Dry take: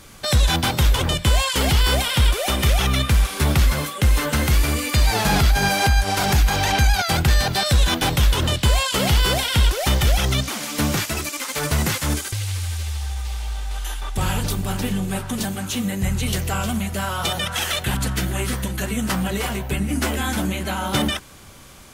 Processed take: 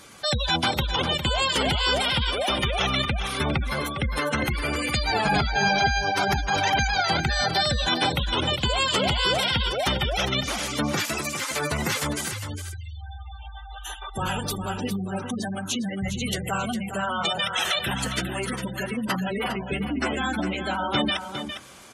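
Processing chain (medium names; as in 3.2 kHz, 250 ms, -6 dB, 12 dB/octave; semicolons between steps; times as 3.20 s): high-pass 270 Hz 6 dB/octave; spectral gate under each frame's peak -15 dB strong; delay 406 ms -9 dB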